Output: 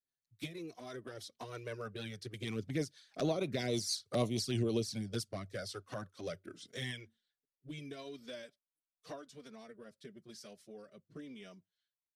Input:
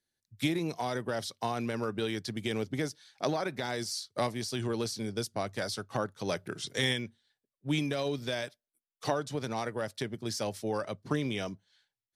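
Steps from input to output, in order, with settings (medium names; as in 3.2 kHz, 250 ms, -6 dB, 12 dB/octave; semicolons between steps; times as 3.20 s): Doppler pass-by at 3.92 s, 5 m/s, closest 4.2 m; band-stop 860 Hz, Q 5.2; touch-sensitive flanger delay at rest 7.5 ms, full sweep at -31 dBFS; in parallel at -6 dB: saturation -29.5 dBFS, distortion -16 dB; on the sum: rotary cabinet horn 6.3 Hz, later 0.9 Hz, at 4.57 s; trim +1.5 dB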